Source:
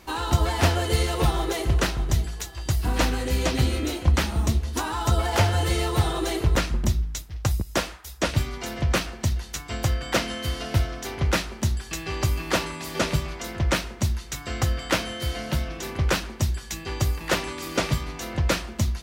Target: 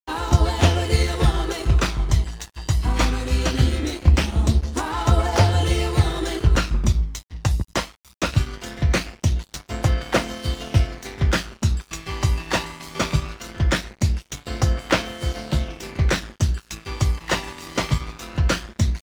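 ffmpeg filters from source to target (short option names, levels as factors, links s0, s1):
-af "lowpass=8500,aeval=exprs='sgn(val(0))*max(abs(val(0))-0.0133,0)':c=same,aphaser=in_gain=1:out_gain=1:delay=1.1:decay=0.31:speed=0.2:type=triangular,volume=1.33"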